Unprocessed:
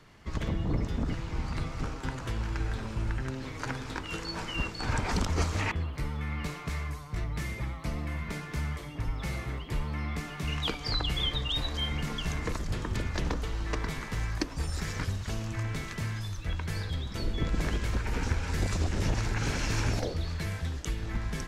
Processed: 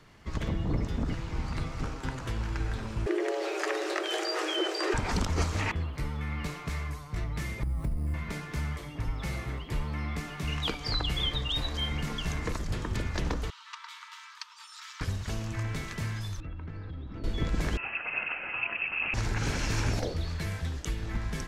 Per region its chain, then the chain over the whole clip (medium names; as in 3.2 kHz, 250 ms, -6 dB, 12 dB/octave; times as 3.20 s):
3.06–4.94 s: frequency shift +300 Hz + level flattener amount 50%
7.63–8.14 s: tilt EQ -4 dB/octave + compression 16:1, threshold -26 dBFS + sample-rate reducer 9.8 kHz
13.50–15.01 s: rippled Chebyshev high-pass 890 Hz, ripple 9 dB + peaking EQ 11 kHz -8.5 dB 0.27 oct
16.40–17.24 s: compression, threshold -35 dBFS + tape spacing loss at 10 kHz 41 dB + small resonant body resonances 290/1300/2700 Hz, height 12 dB, ringing for 90 ms
17.77–19.14 s: resonant high-pass 390 Hz, resonance Q 3.1 + frequency inversion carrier 3 kHz
whole clip: none